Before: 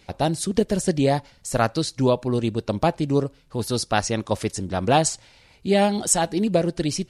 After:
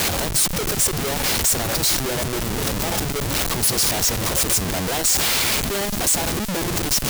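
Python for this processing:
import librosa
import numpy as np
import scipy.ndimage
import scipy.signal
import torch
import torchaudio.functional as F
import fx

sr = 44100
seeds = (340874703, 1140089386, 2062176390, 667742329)

y = x + 0.5 * 10.0 ** (-18.0 / 20.0) * np.diff(np.sign(x), prepend=np.sign(x[:1]))
y = scipy.signal.sosfilt(scipy.signal.butter(16, 340.0, 'highpass', fs=sr, output='sos'), y)
y = fx.peak_eq(y, sr, hz=1100.0, db=-12.5, octaves=2.3)
y = fx.schmitt(y, sr, flips_db=-24.5)
y = fx.high_shelf(y, sr, hz=3300.0, db=9.0)
y = F.gain(torch.from_numpy(y), 2.5).numpy()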